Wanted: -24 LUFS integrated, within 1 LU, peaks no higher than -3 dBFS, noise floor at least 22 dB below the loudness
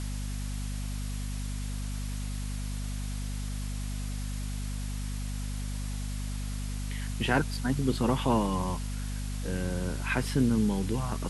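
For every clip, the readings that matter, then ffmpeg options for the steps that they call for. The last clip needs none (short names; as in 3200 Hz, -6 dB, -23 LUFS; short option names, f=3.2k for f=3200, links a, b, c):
hum 50 Hz; harmonics up to 250 Hz; hum level -31 dBFS; noise floor -34 dBFS; noise floor target -55 dBFS; loudness -32.5 LUFS; peak -10.0 dBFS; loudness target -24.0 LUFS
-> -af "bandreject=f=50:t=h:w=4,bandreject=f=100:t=h:w=4,bandreject=f=150:t=h:w=4,bandreject=f=200:t=h:w=4,bandreject=f=250:t=h:w=4"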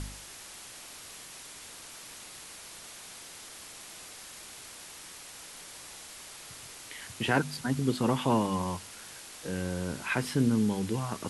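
hum none; noise floor -47 dBFS; noise floor target -57 dBFS
-> -af "afftdn=nr=10:nf=-47"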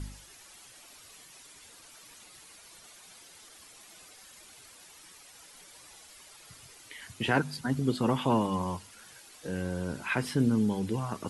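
noise floor -54 dBFS; loudness -30.0 LUFS; peak -11.0 dBFS; loudness target -24.0 LUFS
-> -af "volume=6dB"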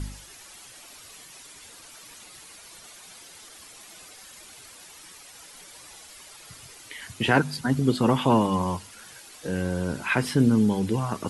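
loudness -24.0 LUFS; peak -5.0 dBFS; noise floor -48 dBFS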